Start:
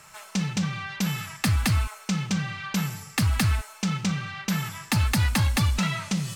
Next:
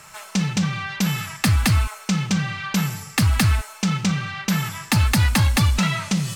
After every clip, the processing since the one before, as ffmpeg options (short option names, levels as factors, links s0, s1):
-af "aeval=exprs='0.15*(cos(1*acos(clip(val(0)/0.15,-1,1)))-cos(1*PI/2))+0.0015*(cos(5*acos(clip(val(0)/0.15,-1,1)))-cos(5*PI/2))':c=same,volume=1.78"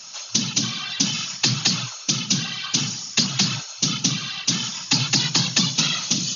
-af "aexciter=amount=3.9:drive=9.7:freq=3000,afftfilt=real='hypot(re,im)*cos(2*PI*random(0))':imag='hypot(re,im)*sin(2*PI*random(1))':win_size=512:overlap=0.75,afftfilt=real='re*between(b*sr/4096,110,6900)':imag='im*between(b*sr/4096,110,6900)':win_size=4096:overlap=0.75"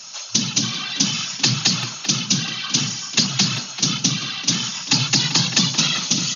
-filter_complex "[0:a]asplit=2[s0][s1];[s1]adelay=390,highpass=300,lowpass=3400,asoftclip=type=hard:threshold=0.251,volume=0.398[s2];[s0][s2]amix=inputs=2:normalize=0,volume=1.26"